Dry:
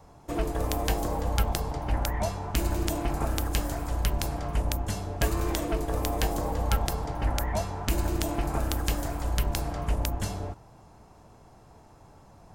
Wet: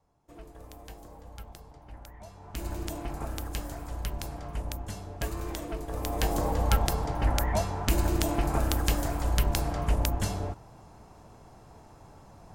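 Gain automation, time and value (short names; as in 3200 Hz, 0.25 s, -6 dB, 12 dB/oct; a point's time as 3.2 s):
2.23 s -19 dB
2.68 s -7 dB
5.86 s -7 dB
6.37 s +1.5 dB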